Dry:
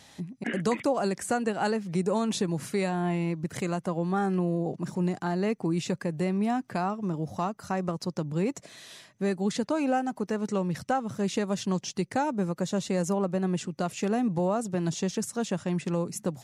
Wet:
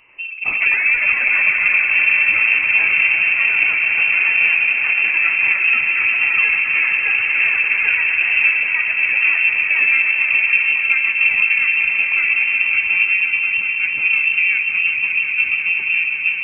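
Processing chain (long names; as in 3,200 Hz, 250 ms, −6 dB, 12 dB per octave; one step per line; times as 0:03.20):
parametric band 320 Hz +14 dB 2.8 octaves
hum removal 62.22 Hz, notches 24
noise that follows the level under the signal 30 dB
echo that builds up and dies away 181 ms, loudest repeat 5, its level −9.5 dB
delay with pitch and tempo change per echo 94 ms, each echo +4 semitones, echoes 3
voice inversion scrambler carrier 2,900 Hz
level −3 dB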